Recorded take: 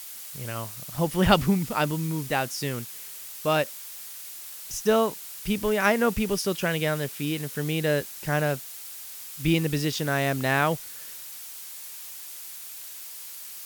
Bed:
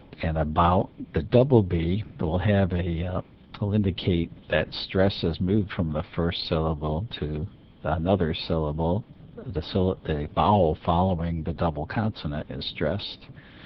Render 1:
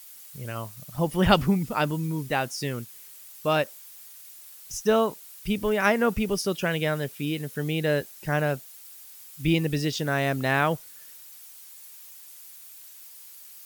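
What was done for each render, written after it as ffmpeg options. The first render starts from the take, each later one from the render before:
-af "afftdn=nr=9:nf=-41"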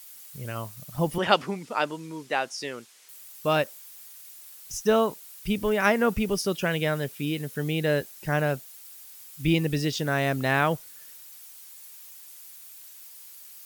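-filter_complex "[0:a]asettb=1/sr,asplit=3[s0][s1][s2];[s0]atrim=end=1.184[s3];[s1]atrim=start=1.18:end=3.09,asetpts=PTS-STARTPTS,afade=t=in:d=0.004:c=qsin,afade=t=out:st=1.906:d=0.004:c=qsin,highpass=370,lowpass=7400[s4];[s2]atrim=start=3.086[s5];[s3][s4]acrossfade=d=0.004:c1=hsin:c2=qsin[s6];[s6][s5]acrossfade=d=0.004:c1=qsin:c2=hsin"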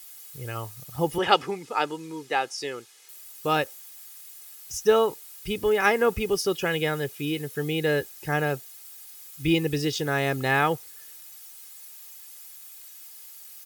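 -af "highpass=50,aecho=1:1:2.4:0.56"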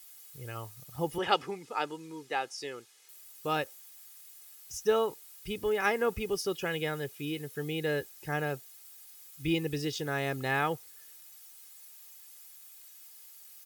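-af "volume=0.447"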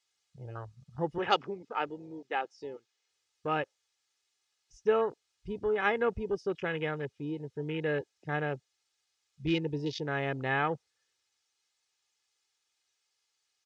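-af "afwtdn=0.0112,lowpass=f=6400:w=0.5412,lowpass=f=6400:w=1.3066"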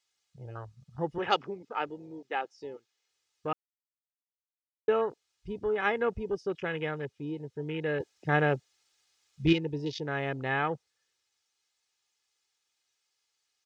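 -filter_complex "[0:a]asettb=1/sr,asplit=3[s0][s1][s2];[s0]atrim=end=8.004[s3];[s1]atrim=start=8:end=9.53,asetpts=PTS-STARTPTS,afade=t=in:d=0.004:c=qsin,afade=t=out:st=1.526:d=0.004:c=qsin,acontrast=86[s4];[s2]atrim=start=9.526[s5];[s3][s4]acrossfade=d=0.004:c1=hsin:c2=qsin[s6];[s6][s5]acrossfade=d=0.004:c1=qsin:c2=hsin,asplit=3[s7][s8][s9];[s7]atrim=end=3.53,asetpts=PTS-STARTPTS,afade=t=out:st=3.526:d=0.004:c=hsin[s10];[s8]atrim=start=3.53:end=4.88,asetpts=PTS-STARTPTS,volume=0[s11];[s9]atrim=start=4.88,asetpts=PTS-STARTPTS,afade=t=in:d=0.004:c=hsin[s12];[s10][s11][s12]concat=n=3:v=0:a=1"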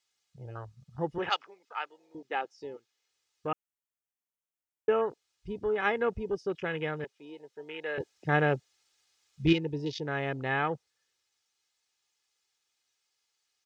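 -filter_complex "[0:a]asettb=1/sr,asplit=3[s0][s1][s2];[s0]atrim=end=1.294[s3];[s1]atrim=start=1.29:end=2.15,asetpts=PTS-STARTPTS,afade=t=in:d=0.004:c=qsin,afade=t=out:st=0.856:d=0.004:c=qsin,highpass=1000[s4];[s2]atrim=start=2.146[s5];[s3][s4]acrossfade=d=0.004:c1=hsin:c2=qsin[s6];[s6][s5]acrossfade=d=0.004:c1=qsin:c2=hsin,asettb=1/sr,asplit=3[s7][s8][s9];[s7]atrim=end=3.474[s10];[s8]atrim=start=3.47:end=5.06,asetpts=PTS-STARTPTS,afade=t=in:d=0.004:c=qsin,afade=t=out:st=1.586:d=0.004:c=qsin,asuperstop=centerf=4300:order=4:qfactor=2[s11];[s9]atrim=start=5.056[s12];[s10][s11]acrossfade=d=0.004:c1=hsin:c2=qsin[s13];[s13][s12]acrossfade=d=0.004:c1=qsin:c2=hsin,asettb=1/sr,asplit=3[s14][s15][s16];[s14]atrim=end=7.044[s17];[s15]atrim=start=7.04:end=7.98,asetpts=PTS-STARTPTS,afade=t=in:d=0.004:c=qsin,afade=t=out:st=0.936:d=0.004:c=qsin,highpass=570[s18];[s16]atrim=start=7.976[s19];[s17][s18]acrossfade=d=0.004:c1=hsin:c2=qsin[s20];[s20][s19]acrossfade=d=0.004:c1=qsin:c2=hsin"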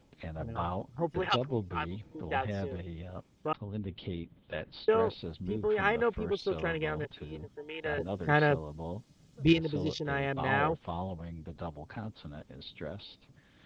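-filter_complex "[1:a]volume=0.188[s0];[0:a][s0]amix=inputs=2:normalize=0"

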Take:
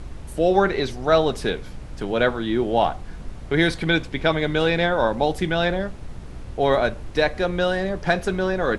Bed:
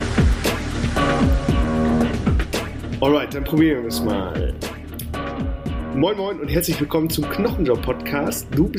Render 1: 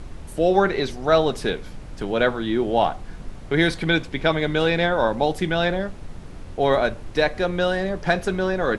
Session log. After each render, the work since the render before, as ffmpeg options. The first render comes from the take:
-af "bandreject=f=60:t=h:w=4,bandreject=f=120:t=h:w=4"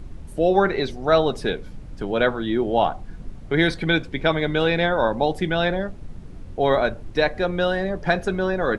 -af "afftdn=nr=8:nf=-38"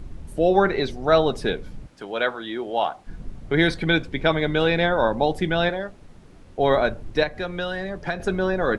-filter_complex "[0:a]asettb=1/sr,asplit=3[s0][s1][s2];[s0]atrim=end=1.874[s3];[s1]atrim=start=1.87:end=3.07,asetpts=PTS-STARTPTS,afade=t=in:d=0.004:c=qsin,afade=t=out:st=1.196:d=0.004:c=qsin,highpass=f=770:p=1[s4];[s2]atrim=start=3.066[s5];[s3][s4]acrossfade=d=0.004:c1=hsin:c2=qsin[s6];[s6][s5]acrossfade=d=0.004:c1=qsin:c2=hsin,asettb=1/sr,asplit=3[s7][s8][s9];[s7]atrim=end=5.694[s10];[s8]atrim=start=5.69:end=6.59,asetpts=PTS-STARTPTS,afade=t=in:d=0.004:c=qsin,afade=t=out:st=0.896:d=0.004:c=qsin,lowshelf=f=260:g=-12[s11];[s9]atrim=start=6.586[s12];[s10][s11]acrossfade=d=0.004:c1=hsin:c2=qsin[s13];[s13][s12]acrossfade=d=0.004:c1=qsin:c2=hsin,asettb=1/sr,asplit=3[s14][s15][s16];[s14]atrim=end=7.234[s17];[s15]atrim=start=7.23:end=8.2,asetpts=PTS-STARTPTS,afade=t=in:d=0.004:c=qsin,afade=t=out:st=0.966:d=0.004:c=qsin,acrossover=split=81|180|1100[s18][s19][s20][s21];[s18]acompressor=threshold=0.00891:ratio=3[s22];[s19]acompressor=threshold=0.01:ratio=3[s23];[s20]acompressor=threshold=0.0282:ratio=3[s24];[s21]acompressor=threshold=0.0316:ratio=3[s25];[s22][s23][s24][s25]amix=inputs=4:normalize=0[s26];[s16]atrim=start=8.196[s27];[s17][s26]acrossfade=d=0.004:c1=hsin:c2=qsin[s28];[s28][s27]acrossfade=d=0.004:c1=qsin:c2=hsin"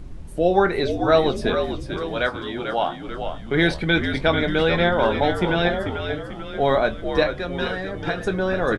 -filter_complex "[0:a]asplit=2[s0][s1];[s1]adelay=23,volume=0.282[s2];[s0][s2]amix=inputs=2:normalize=0,asplit=7[s3][s4][s5][s6][s7][s8][s9];[s4]adelay=442,afreqshift=-74,volume=0.447[s10];[s5]adelay=884,afreqshift=-148,volume=0.219[s11];[s6]adelay=1326,afreqshift=-222,volume=0.107[s12];[s7]adelay=1768,afreqshift=-296,volume=0.0525[s13];[s8]adelay=2210,afreqshift=-370,volume=0.0257[s14];[s9]adelay=2652,afreqshift=-444,volume=0.0126[s15];[s3][s10][s11][s12][s13][s14][s15]amix=inputs=7:normalize=0"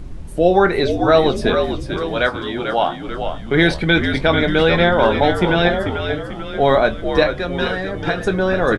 -af "volume=1.78,alimiter=limit=0.794:level=0:latency=1"

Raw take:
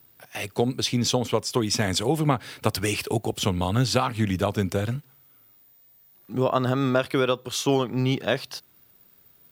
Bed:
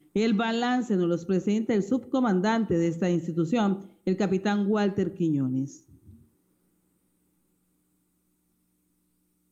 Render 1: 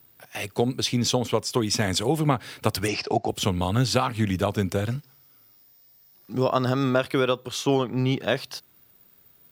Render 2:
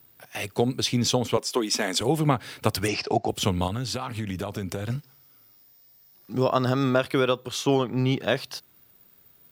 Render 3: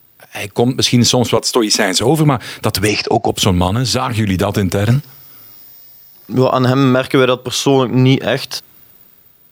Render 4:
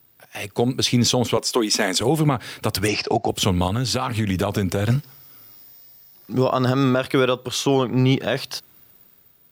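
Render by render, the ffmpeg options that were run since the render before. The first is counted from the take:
-filter_complex "[0:a]asplit=3[s0][s1][s2];[s0]afade=t=out:st=2.87:d=0.02[s3];[s1]highpass=140,equalizer=f=710:t=q:w=4:g=10,equalizer=f=3300:t=q:w=4:g=-8,equalizer=f=5200:t=q:w=4:g=9,lowpass=f=5600:w=0.5412,lowpass=f=5600:w=1.3066,afade=t=in:st=2.87:d=0.02,afade=t=out:st=3.28:d=0.02[s4];[s2]afade=t=in:st=3.28:d=0.02[s5];[s3][s4][s5]amix=inputs=3:normalize=0,asettb=1/sr,asplit=3[s6][s7][s8];[s6]atrim=end=4.904[s9];[s7]atrim=start=4.9:end=6.84,asetpts=PTS-STARTPTS,afade=t=in:d=0.004:c=qsin,afade=t=out:st=1.936:d=0.004:c=qsin,equalizer=f=5200:w=4.3:g=13[s10];[s8]atrim=start=6.836[s11];[s9][s10]acrossfade=d=0.004:c1=hsin:c2=qsin[s12];[s12][s11]acrossfade=d=0.004:c1=qsin:c2=hsin,asettb=1/sr,asplit=3[s13][s14][s15];[s13]atrim=end=7.484[s16];[s14]atrim=start=7.48:end=8.22,asetpts=PTS-STARTPTS,afade=t=in:d=0.004:c=qsin,afade=t=out:st=0.736:d=0.004:c=qsin,highshelf=f=5200:g=-5.5[s17];[s15]atrim=start=8.216[s18];[s16][s17]acrossfade=d=0.004:c1=hsin:c2=qsin[s19];[s19][s18]acrossfade=d=0.004:c1=qsin:c2=hsin"
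-filter_complex "[0:a]asettb=1/sr,asplit=3[s0][s1][s2];[s0]atrim=end=1.374[s3];[s1]atrim=start=1.37:end=2.01,asetpts=PTS-STARTPTS,afade=t=in:d=0.004:c=qsin,afade=t=out:st=0.636:d=0.004:c=qsin,highpass=f=240:w=0.5412,highpass=f=240:w=1.3066[s4];[s2]atrim=start=2.006[s5];[s3][s4]acrossfade=d=0.004:c1=hsin:c2=qsin[s6];[s6][s5]acrossfade=d=0.004:c1=qsin:c2=hsin,asettb=1/sr,asplit=3[s7][s8][s9];[s7]atrim=end=3.674[s10];[s8]atrim=start=3.67:end=4.9,asetpts=PTS-STARTPTS,afade=t=in:d=0.004:c=qsin,afade=t=out:st=1.226:d=0.004:c=qsin,acompressor=threshold=0.0501:ratio=6:attack=3.2:release=140:knee=1:detection=peak[s11];[s9]atrim=start=4.896[s12];[s10][s11]acrossfade=d=0.004:c1=hsin:c2=qsin[s13];[s13][s12]acrossfade=d=0.004:c1=qsin:c2=hsin"
-af "dynaudnorm=f=180:g=7:m=3.98,alimiter=level_in=2.11:limit=0.891:release=50:level=0:latency=1"
-af "volume=0.447"

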